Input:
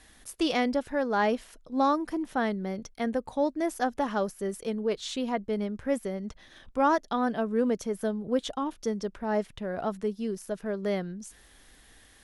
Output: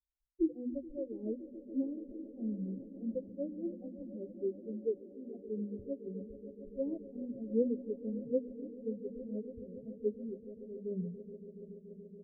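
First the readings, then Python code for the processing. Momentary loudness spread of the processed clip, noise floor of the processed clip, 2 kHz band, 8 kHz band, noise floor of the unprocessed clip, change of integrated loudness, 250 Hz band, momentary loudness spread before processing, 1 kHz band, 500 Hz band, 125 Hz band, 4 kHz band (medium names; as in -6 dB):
12 LU, -55 dBFS, under -40 dB, under -35 dB, -57 dBFS, -10.0 dB, -7.5 dB, 9 LU, under -40 dB, -9.0 dB, -6.5 dB, under -40 dB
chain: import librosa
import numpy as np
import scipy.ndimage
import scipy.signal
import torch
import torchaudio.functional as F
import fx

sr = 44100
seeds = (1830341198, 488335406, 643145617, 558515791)

p1 = fx.bin_expand(x, sr, power=3.0)
p2 = scipy.signal.sosfilt(scipy.signal.cheby1(6, 3, 540.0, 'lowpass', fs=sr, output='sos'), p1)
p3 = fx.hum_notches(p2, sr, base_hz=50, count=7)
p4 = p3 + fx.echo_swell(p3, sr, ms=142, loudest=5, wet_db=-18.0, dry=0)
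p5 = fx.am_noise(p4, sr, seeds[0], hz=5.7, depth_pct=60)
y = p5 * librosa.db_to_amplitude(5.0)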